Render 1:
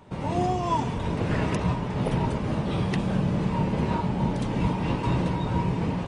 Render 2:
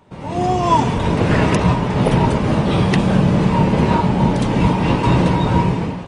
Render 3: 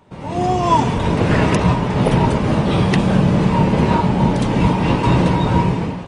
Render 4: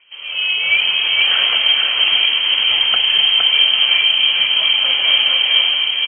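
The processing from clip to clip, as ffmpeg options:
ffmpeg -i in.wav -af "lowshelf=frequency=150:gain=-3,dynaudnorm=framelen=130:gausssize=7:maxgain=13.5dB" out.wav
ffmpeg -i in.wav -af anull out.wav
ffmpeg -i in.wav -filter_complex "[0:a]asplit=2[link_01][link_02];[link_02]aecho=0:1:463:0.668[link_03];[link_01][link_03]amix=inputs=2:normalize=0,lowpass=frequency=2800:width_type=q:width=0.5098,lowpass=frequency=2800:width_type=q:width=0.6013,lowpass=frequency=2800:width_type=q:width=0.9,lowpass=frequency=2800:width_type=q:width=2.563,afreqshift=-3300,volume=-1dB" out.wav

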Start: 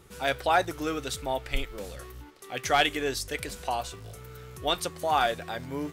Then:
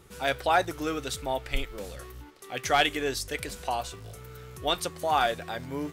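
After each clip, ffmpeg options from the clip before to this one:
ffmpeg -i in.wav -af anull out.wav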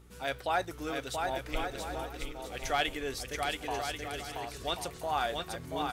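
ffmpeg -i in.wav -filter_complex "[0:a]aeval=exprs='val(0)+0.00355*(sin(2*PI*60*n/s)+sin(2*PI*2*60*n/s)/2+sin(2*PI*3*60*n/s)/3+sin(2*PI*4*60*n/s)/4+sin(2*PI*5*60*n/s)/5)':channel_layout=same,asplit=2[link_01][link_02];[link_02]aecho=0:1:680|1088|1333|1480|1568:0.631|0.398|0.251|0.158|0.1[link_03];[link_01][link_03]amix=inputs=2:normalize=0,volume=-7dB" out.wav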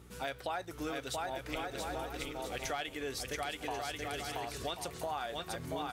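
ffmpeg -i in.wav -af "highpass=62,acompressor=threshold=-38dB:ratio=6,volume=3dB" out.wav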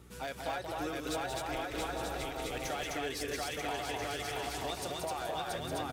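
ffmpeg -i in.wav -filter_complex "[0:a]acrossover=split=470[link_01][link_02];[link_02]asoftclip=type=hard:threshold=-35dB[link_03];[link_01][link_03]amix=inputs=2:normalize=0,aecho=1:1:180.8|256.6:0.501|0.794" out.wav

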